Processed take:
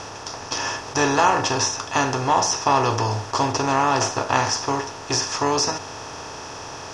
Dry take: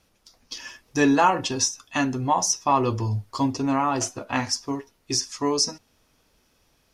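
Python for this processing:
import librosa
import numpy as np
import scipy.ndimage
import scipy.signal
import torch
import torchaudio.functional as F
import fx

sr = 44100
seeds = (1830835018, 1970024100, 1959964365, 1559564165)

y = fx.bin_compress(x, sr, power=0.4)
y = scipy.signal.sosfilt(scipy.signal.butter(2, 6400.0, 'lowpass', fs=sr, output='sos'), y)
y = fx.peak_eq(y, sr, hz=250.0, db=-8.5, octaves=0.6)
y = y * librosa.db_to_amplitude(-1.5)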